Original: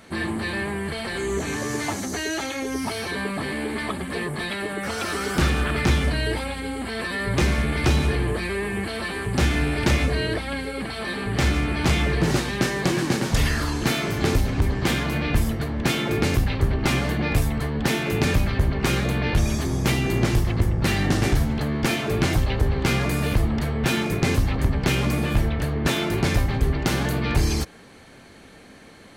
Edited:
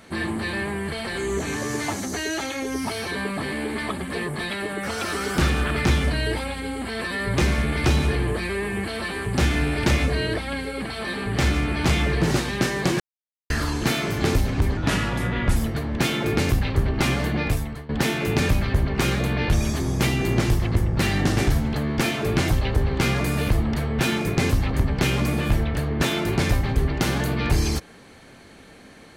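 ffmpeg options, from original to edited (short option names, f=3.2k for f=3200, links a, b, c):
-filter_complex "[0:a]asplit=6[a][b][c][d][e][f];[a]atrim=end=13,asetpts=PTS-STARTPTS,afade=t=out:st=12.996:d=0.004:c=hsin[g];[b]atrim=start=13:end=13.5,asetpts=PTS-STARTPTS,volume=0[h];[c]atrim=start=13.5:end=14.774,asetpts=PTS-STARTPTS,afade=t=in:d=0.004:c=hsin[i];[d]atrim=start=14.77:end=15.41,asetpts=PTS-STARTPTS,asetrate=35721,aresample=44100,atrim=end_sample=34844,asetpts=PTS-STARTPTS[j];[e]atrim=start=15.406:end=17.74,asetpts=PTS-STARTPTS,afade=t=out:st=1.824:d=0.51:silence=0.149624[k];[f]atrim=start=17.74,asetpts=PTS-STARTPTS,afade=t=in:d=0.004:c=hsin:silence=0.149624[l];[g][h][i]concat=n=3:v=0:a=1[m];[m][j]acrossfade=d=0.004:c1=hsin:c2=hsin[n];[k][l]concat=n=2:v=0:a=1[o];[n][o]acrossfade=d=0.004:c1=hsin:c2=hsin"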